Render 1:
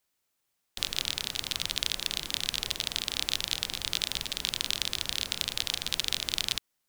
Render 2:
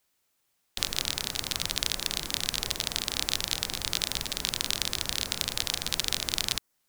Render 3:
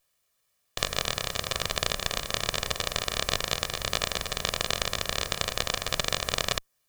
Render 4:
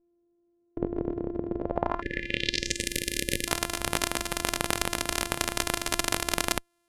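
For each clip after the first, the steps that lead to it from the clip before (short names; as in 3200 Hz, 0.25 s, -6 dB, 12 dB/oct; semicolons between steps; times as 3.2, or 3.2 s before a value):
dynamic EQ 3100 Hz, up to -6 dB, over -45 dBFS, Q 1.3; gain +4.5 dB
minimum comb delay 1.7 ms; gain +2 dB
sample sorter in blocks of 128 samples; low-pass sweep 390 Hz -> 11000 Hz, 1.55–2.9; spectral delete 2.01–3.48, 560–1700 Hz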